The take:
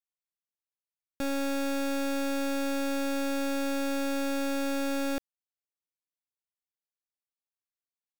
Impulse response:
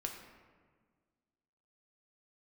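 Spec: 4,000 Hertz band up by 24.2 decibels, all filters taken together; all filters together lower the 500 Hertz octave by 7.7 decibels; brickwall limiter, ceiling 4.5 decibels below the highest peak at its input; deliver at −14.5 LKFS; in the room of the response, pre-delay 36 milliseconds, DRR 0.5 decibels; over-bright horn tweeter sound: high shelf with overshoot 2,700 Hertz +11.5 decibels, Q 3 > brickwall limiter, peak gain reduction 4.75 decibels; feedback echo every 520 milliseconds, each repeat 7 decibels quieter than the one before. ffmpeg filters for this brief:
-filter_complex "[0:a]equalizer=frequency=500:width_type=o:gain=-8,equalizer=frequency=4000:width_type=o:gain=8.5,alimiter=level_in=4.5dB:limit=-24dB:level=0:latency=1,volume=-4.5dB,aecho=1:1:520|1040|1560|2080|2600:0.447|0.201|0.0905|0.0407|0.0183,asplit=2[link_01][link_02];[1:a]atrim=start_sample=2205,adelay=36[link_03];[link_02][link_03]afir=irnorm=-1:irlink=0,volume=0dB[link_04];[link_01][link_04]amix=inputs=2:normalize=0,highshelf=frequency=2700:width_type=q:width=3:gain=11.5,volume=10.5dB,alimiter=limit=-6dB:level=0:latency=1"

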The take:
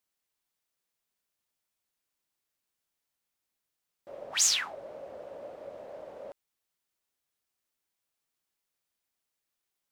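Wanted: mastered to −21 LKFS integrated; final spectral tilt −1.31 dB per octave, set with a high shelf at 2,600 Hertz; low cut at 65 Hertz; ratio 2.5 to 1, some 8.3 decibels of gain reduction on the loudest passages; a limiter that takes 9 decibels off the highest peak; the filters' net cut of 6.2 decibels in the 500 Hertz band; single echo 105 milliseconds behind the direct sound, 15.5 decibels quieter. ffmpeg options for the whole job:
ffmpeg -i in.wav -af "highpass=65,equalizer=frequency=500:width_type=o:gain=-7,highshelf=frequency=2600:gain=-7,acompressor=threshold=-39dB:ratio=2.5,alimiter=level_in=11dB:limit=-24dB:level=0:latency=1,volume=-11dB,aecho=1:1:105:0.168,volume=27dB" out.wav

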